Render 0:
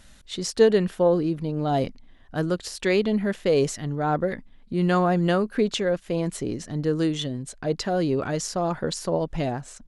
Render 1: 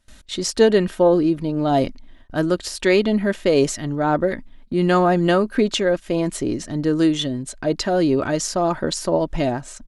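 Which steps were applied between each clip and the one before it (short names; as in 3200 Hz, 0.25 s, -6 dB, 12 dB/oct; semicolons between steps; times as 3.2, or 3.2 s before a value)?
comb 3.2 ms, depth 35%; gate with hold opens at -40 dBFS; gain +5 dB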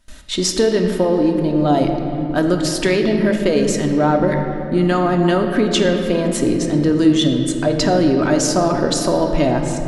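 compressor, threshold -19 dBFS, peak gain reduction 9.5 dB; on a send at -3.5 dB: reverb RT60 3.1 s, pre-delay 3 ms; on the sum: gain +5.5 dB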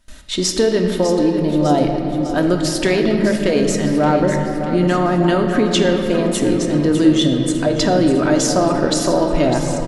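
feedback echo 0.602 s, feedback 55%, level -11 dB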